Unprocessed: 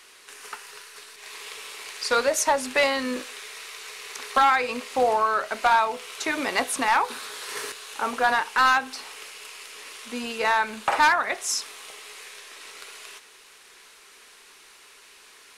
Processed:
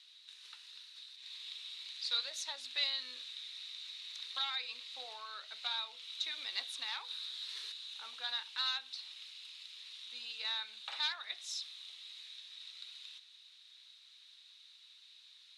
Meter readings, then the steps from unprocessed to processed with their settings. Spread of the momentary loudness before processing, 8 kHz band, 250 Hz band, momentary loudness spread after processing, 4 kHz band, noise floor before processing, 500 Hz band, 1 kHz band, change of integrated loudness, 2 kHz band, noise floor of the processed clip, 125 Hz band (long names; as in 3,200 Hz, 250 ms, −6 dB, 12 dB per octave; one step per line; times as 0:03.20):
20 LU, −19.5 dB, below −35 dB, 21 LU, −3.0 dB, −51 dBFS, −33.0 dB, −27.5 dB, −16.0 dB, −20.5 dB, −60 dBFS, can't be measured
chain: resonant band-pass 3,800 Hz, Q 9.4
level +3 dB